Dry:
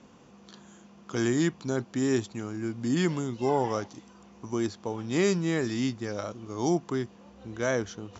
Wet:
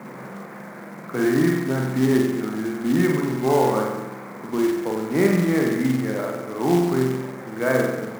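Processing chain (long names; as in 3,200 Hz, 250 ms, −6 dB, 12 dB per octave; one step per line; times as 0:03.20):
linear delta modulator 64 kbit/s, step −36.5 dBFS
Chebyshev band-pass filter 130–2,200 Hz, order 5
spring reverb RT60 1.1 s, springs 46 ms, chirp 80 ms, DRR −0.5 dB
floating-point word with a short mantissa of 2 bits
level +5 dB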